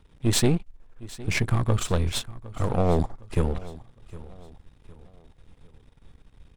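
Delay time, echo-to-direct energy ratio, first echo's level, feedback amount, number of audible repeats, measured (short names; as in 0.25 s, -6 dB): 0.76 s, -18.0 dB, -18.5 dB, 40%, 3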